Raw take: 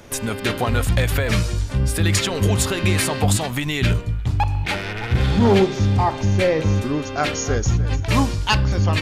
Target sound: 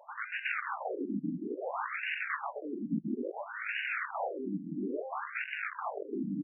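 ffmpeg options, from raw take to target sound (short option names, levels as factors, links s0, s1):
-af "aeval=exprs='(mod(7.94*val(0)+1,2)-1)/7.94':c=same,atempo=1.4,afftfilt=real='re*between(b*sr/1024,220*pow(2100/220,0.5+0.5*sin(2*PI*0.59*pts/sr))/1.41,220*pow(2100/220,0.5+0.5*sin(2*PI*0.59*pts/sr))*1.41)':imag='im*between(b*sr/1024,220*pow(2100/220,0.5+0.5*sin(2*PI*0.59*pts/sr))/1.41,220*pow(2100/220,0.5+0.5*sin(2*PI*0.59*pts/sr))*1.41)':win_size=1024:overlap=0.75,volume=0.631"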